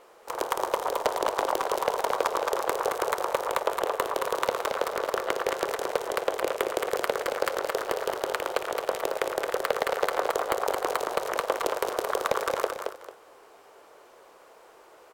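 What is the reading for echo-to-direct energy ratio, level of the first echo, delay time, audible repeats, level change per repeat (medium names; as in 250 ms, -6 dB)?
-4.5 dB, -5.0 dB, 223 ms, 2, -11.0 dB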